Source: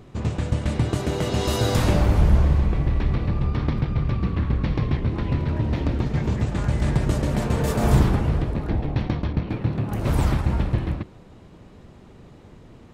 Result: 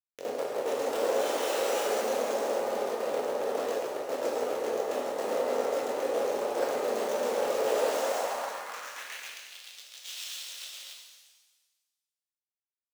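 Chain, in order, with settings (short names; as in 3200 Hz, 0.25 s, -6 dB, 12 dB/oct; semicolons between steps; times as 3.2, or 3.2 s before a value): random spectral dropouts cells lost 29%; in parallel at -5 dB: soft clip -22.5 dBFS, distortion -8 dB; on the sum: chorus voices 6, 0.49 Hz, delay 24 ms, depth 1.9 ms; sample-and-hold 7×; pre-emphasis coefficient 0.97; fixed phaser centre 2900 Hz, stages 8; frequency shift +170 Hz; Schmitt trigger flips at -40 dBFS; high-pass sweep 450 Hz -> 3400 Hz, 7.84–9.59; upward compressor, threshold -50 dBFS; bell 540 Hz +12.5 dB 0.7 oct; shimmer reverb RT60 1.3 s, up +7 st, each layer -8 dB, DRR -1.5 dB; gain +6 dB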